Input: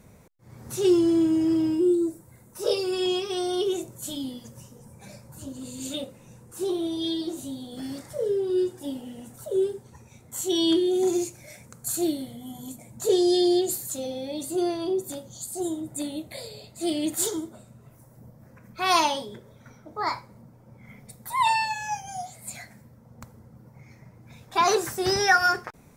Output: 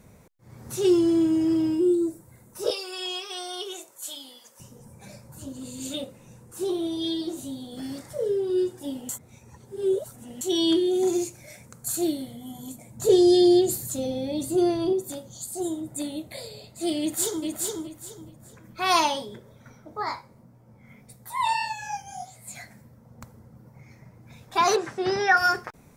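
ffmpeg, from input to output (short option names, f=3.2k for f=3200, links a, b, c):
-filter_complex "[0:a]asettb=1/sr,asplit=3[a][b][c];[a]atrim=end=2.704[d];[b]atrim=start=2.7:end=4.6,asetpts=PTS-STARTPTS,afade=t=in:d=0.004:c=qsin,afade=t=out:st=1.896:d=0.004:c=qsin,highpass=790[e];[c]atrim=start=4.596[f];[d][e]acrossfade=d=0.004:c1=hsin:c2=qsin[g];[g][f]acrossfade=d=0.004:c1=qsin:c2=hsin,asettb=1/sr,asplit=3[h][i][j];[h]atrim=end=12.994[k];[i]atrim=start=12.99:end=14.93,asetpts=PTS-STARTPTS,afade=t=in:d=0.004:c=qsin,afade=t=out:st=1.936:d=0.004:c=qsin,lowshelf=f=280:g=10.5[l];[j]atrim=start=14.926[m];[k][l]acrossfade=d=0.004:c1=hsin:c2=qsin[n];[n][m]acrossfade=d=0.004:c1=qsin:c2=hsin,asplit=2[o][p];[p]afade=t=in:st=17:d=0.01,afade=t=out:st=17.45:d=0.01,aecho=0:1:420|840|1260|1680:0.707946|0.176986|0.0442466|0.0110617[q];[o][q]amix=inputs=2:normalize=0,asplit=3[r][s][t];[r]afade=t=out:st=20.02:d=0.02[u];[s]flanger=delay=15.5:depth=7.2:speed=1.7,afade=t=in:st=20.02:d=0.02,afade=t=out:st=22.55:d=0.02[v];[t]afade=t=in:st=22.55:d=0.02[w];[u][v][w]amix=inputs=3:normalize=0,asettb=1/sr,asplit=3[x][y][z];[x]atrim=end=24.764[aa];[y]atrim=start=24.76:end=25.37,asetpts=PTS-STARTPTS,afade=t=in:d=0.004:c=qsin,afade=t=out:st=0.606:d=0.004:c=qsin,highpass=140,lowpass=3.2k[ab];[z]atrim=start=25.366[ac];[aa][ab]acrossfade=d=0.004:c1=hsin:c2=qsin[ad];[ad][ac]acrossfade=d=0.004:c1=qsin:c2=hsin,asplit=3[ae][af][ag];[ae]atrim=end=9.092[ah];[af]atrim=start=9.088:end=10.412,asetpts=PTS-STARTPTS,areverse[ai];[ag]atrim=start=10.408[aj];[ah][ai]acrossfade=d=0.004:c1=hsin:c2=hsin[ak];[ak][aj]acrossfade=d=0.004:c1=hsin:c2=hsin"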